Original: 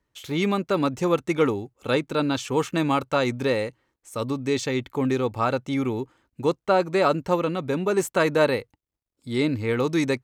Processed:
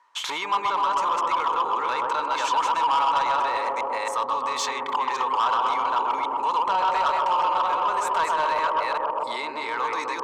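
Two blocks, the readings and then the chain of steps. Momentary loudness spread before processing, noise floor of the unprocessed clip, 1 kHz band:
7 LU, −85 dBFS, +10.0 dB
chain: delay that plays each chunk backwards 272 ms, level −4 dB
in parallel at +1 dB: compressor whose output falls as the input rises −31 dBFS, ratio −1
on the sum: low-pass filter 7,600 Hz 12 dB per octave
on a send: bucket-brigade delay 128 ms, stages 1,024, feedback 77%, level −3 dB
on the sum: brickwall limiter −14.5 dBFS, peak gain reduction 9.5 dB
high-pass with resonance 980 Hz, resonance Q 7.8
soft clipping −16.5 dBFS, distortion −13 dB

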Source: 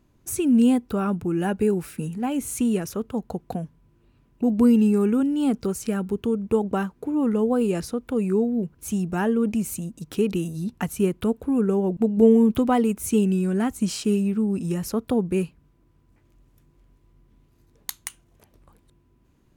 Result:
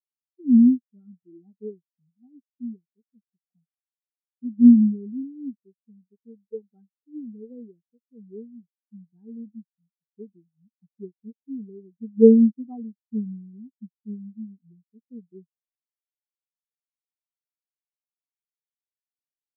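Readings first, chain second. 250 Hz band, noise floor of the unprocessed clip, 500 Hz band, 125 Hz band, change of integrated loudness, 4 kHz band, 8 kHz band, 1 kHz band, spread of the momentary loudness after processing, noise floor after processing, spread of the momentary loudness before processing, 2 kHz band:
−1.5 dB, −62 dBFS, −4.5 dB, can't be measured, +5.0 dB, below −40 dB, below −40 dB, below −25 dB, 23 LU, below −85 dBFS, 13 LU, below −40 dB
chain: every bin expanded away from the loudest bin 4 to 1
level +4 dB

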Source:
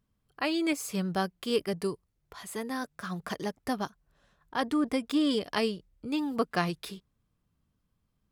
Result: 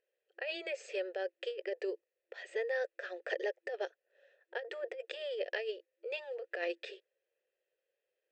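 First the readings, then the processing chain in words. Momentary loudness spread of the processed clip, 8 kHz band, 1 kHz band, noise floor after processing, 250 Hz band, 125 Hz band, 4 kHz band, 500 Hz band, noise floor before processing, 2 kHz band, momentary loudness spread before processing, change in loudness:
8 LU, below −15 dB, −15.0 dB, below −85 dBFS, −22.5 dB, below −40 dB, −9.5 dB, −3.0 dB, −78 dBFS, −3.0 dB, 12 LU, −8.0 dB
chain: formant filter e
compressor whose output falls as the input rises −44 dBFS, ratio −1
brick-wall band-pass 340–8,300 Hz
level +8.5 dB

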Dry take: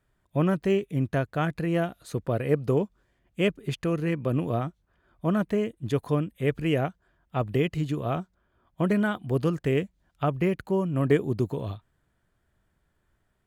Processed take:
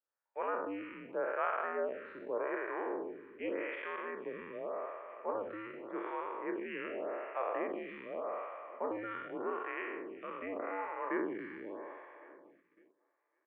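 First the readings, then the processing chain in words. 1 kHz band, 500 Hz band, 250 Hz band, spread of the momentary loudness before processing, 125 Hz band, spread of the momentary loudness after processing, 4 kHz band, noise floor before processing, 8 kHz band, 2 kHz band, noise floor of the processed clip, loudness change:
−4.0 dB, −10.0 dB, −16.5 dB, 9 LU, −38.0 dB, 9 LU, −18.0 dB, −73 dBFS, can't be measured, −6.0 dB, −80 dBFS, −12.0 dB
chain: peak hold with a decay on every bin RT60 2.13 s
repeating echo 554 ms, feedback 59%, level −19.5 dB
noise gate −44 dBFS, range −14 dB
single-sideband voice off tune −94 Hz 550–2,400 Hz
phaser with staggered stages 0.85 Hz
level −5.5 dB

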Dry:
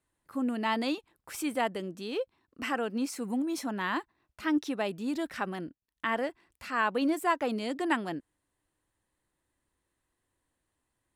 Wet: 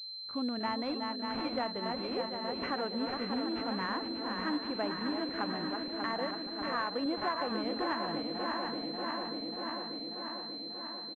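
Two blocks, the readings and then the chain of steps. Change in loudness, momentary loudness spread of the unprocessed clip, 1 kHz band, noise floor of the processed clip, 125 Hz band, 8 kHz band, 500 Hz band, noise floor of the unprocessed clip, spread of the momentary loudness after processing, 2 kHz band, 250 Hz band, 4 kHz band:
−3.0 dB, 10 LU, −1.5 dB, −43 dBFS, −1.0 dB, below −20 dB, −2.0 dB, −83 dBFS, 5 LU, −4.5 dB, −3.0 dB, +7.0 dB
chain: feedback delay that plays each chunk backwards 294 ms, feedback 83%, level −7 dB
single-tap delay 736 ms −12.5 dB
dynamic equaliser 310 Hz, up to −4 dB, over −37 dBFS, Q 0.8
downward compressor 6 to 1, threshold −29 dBFS, peak gain reduction 8 dB
switching amplifier with a slow clock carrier 4,100 Hz

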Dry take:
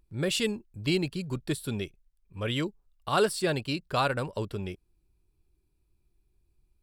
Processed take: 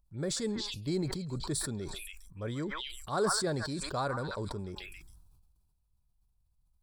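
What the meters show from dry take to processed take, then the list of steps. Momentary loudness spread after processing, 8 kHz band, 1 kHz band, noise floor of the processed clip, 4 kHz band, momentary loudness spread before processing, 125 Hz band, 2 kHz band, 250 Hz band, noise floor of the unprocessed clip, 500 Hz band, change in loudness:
13 LU, +2.5 dB, −4.5 dB, −74 dBFS, −4.5 dB, 12 LU, −4.0 dB, −6.5 dB, −4.0 dB, −72 dBFS, −5.0 dB, −4.5 dB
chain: echo through a band-pass that steps 137 ms, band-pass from 1,300 Hz, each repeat 1.4 octaves, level −7 dB
phaser swept by the level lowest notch 340 Hz, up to 2,800 Hz, full sweep at −32 dBFS
level that may fall only so fast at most 32 dB per second
level −5.5 dB

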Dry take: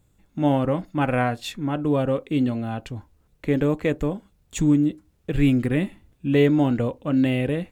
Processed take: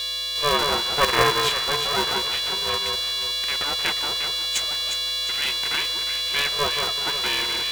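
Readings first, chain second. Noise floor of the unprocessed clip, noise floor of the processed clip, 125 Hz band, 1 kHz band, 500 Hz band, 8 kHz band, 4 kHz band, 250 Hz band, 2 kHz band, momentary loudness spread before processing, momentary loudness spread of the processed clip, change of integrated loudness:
−64 dBFS, −26 dBFS, −15.0 dB, +5.0 dB, −4.0 dB, can't be measured, +21.5 dB, −18.5 dB, +8.0 dB, 13 LU, 4 LU, +1.5 dB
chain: linear-phase brick-wall high-pass 630 Hz
steady tone 3,700 Hz −31 dBFS
on a send: delay that swaps between a low-pass and a high-pass 178 ms, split 1,200 Hz, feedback 63%, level −4 dB
on the sum: ring modulator with a square carrier 290 Hz
level +6 dB

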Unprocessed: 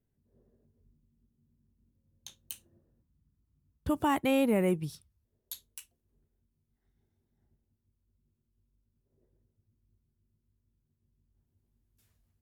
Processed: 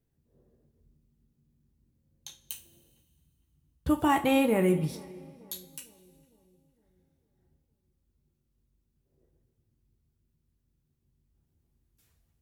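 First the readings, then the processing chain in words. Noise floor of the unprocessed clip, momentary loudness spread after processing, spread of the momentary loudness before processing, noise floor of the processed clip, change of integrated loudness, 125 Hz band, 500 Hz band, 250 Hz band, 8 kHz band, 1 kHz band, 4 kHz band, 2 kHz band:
−81 dBFS, 21 LU, 19 LU, −77 dBFS, +2.0 dB, +4.0 dB, +2.5 dB, +3.0 dB, +3.5 dB, +4.0 dB, +3.5 dB, +4.0 dB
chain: feedback echo with a low-pass in the loop 456 ms, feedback 50%, low-pass 1,300 Hz, level −23 dB
coupled-rooms reverb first 0.31 s, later 2.1 s, from −19 dB, DRR 4.5 dB
level +2 dB

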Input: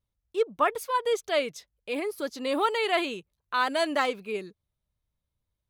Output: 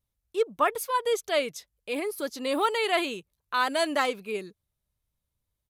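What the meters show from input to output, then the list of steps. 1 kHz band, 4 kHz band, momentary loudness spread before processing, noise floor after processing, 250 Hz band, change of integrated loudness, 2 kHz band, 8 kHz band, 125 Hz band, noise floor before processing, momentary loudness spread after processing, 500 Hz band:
0.0 dB, +1.0 dB, 10 LU, −84 dBFS, 0.0 dB, +0.5 dB, +0.5 dB, +4.5 dB, can't be measured, −85 dBFS, 10 LU, 0.0 dB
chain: high-shelf EQ 9,300 Hz +10.5 dB
downsampling to 32,000 Hz

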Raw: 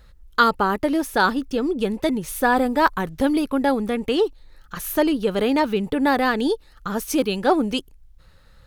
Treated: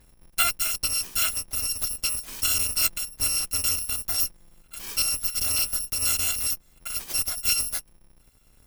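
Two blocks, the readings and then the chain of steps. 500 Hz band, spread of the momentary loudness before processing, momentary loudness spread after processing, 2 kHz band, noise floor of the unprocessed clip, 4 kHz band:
−26.5 dB, 7 LU, 7 LU, −9.0 dB, −52 dBFS, +3.5 dB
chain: samples in bit-reversed order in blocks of 256 samples
harmonic generator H 8 −22 dB, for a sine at −3 dBFS
level −6 dB

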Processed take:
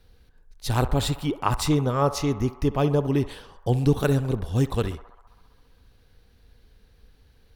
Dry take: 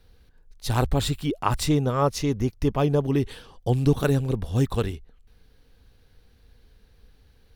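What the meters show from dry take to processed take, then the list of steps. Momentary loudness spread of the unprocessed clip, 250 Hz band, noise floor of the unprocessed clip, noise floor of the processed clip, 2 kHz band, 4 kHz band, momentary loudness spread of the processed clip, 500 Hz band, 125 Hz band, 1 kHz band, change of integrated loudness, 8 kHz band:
8 LU, 0.0 dB, −58 dBFS, −58 dBFS, 0.0 dB, 0.0 dB, 8 LU, 0.0 dB, 0.0 dB, +0.5 dB, 0.0 dB, 0.0 dB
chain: feedback echo with a band-pass in the loop 66 ms, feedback 80%, band-pass 1,000 Hz, level −13 dB
Opus 256 kbit/s 48,000 Hz

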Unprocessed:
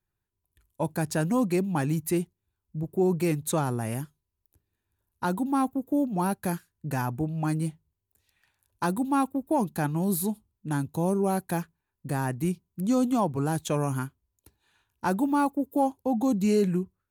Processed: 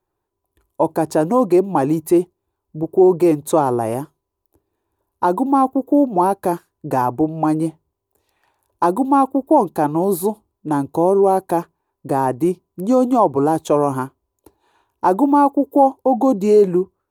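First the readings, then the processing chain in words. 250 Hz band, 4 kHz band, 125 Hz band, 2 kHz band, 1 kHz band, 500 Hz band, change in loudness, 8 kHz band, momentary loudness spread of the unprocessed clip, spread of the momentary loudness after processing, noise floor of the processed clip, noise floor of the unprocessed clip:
+8.5 dB, can't be measured, +1.5 dB, +2.0 dB, +13.5 dB, +14.0 dB, +10.5 dB, +1.5 dB, 9 LU, 9 LU, −78 dBFS, −84 dBFS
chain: flat-topped bell 580 Hz +14 dB 2.3 octaves
in parallel at −1 dB: brickwall limiter −11.5 dBFS, peak gain reduction 10.5 dB
on the sum: level −3.5 dB

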